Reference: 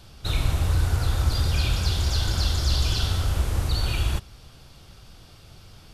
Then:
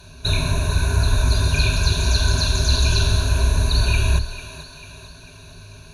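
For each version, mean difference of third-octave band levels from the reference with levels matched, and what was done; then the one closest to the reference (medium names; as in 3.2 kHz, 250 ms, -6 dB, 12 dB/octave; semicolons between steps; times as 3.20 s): 5.0 dB: rippled EQ curve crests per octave 1.5, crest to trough 18 dB; on a send: thinning echo 445 ms, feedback 53%, high-pass 290 Hz, level -12 dB; on the sum: trim +2.5 dB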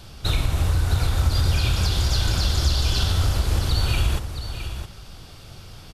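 2.5 dB: compression, threshold -22 dBFS, peak gain reduction 7 dB; on a send: delay 664 ms -9.5 dB; on the sum: trim +5.5 dB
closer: second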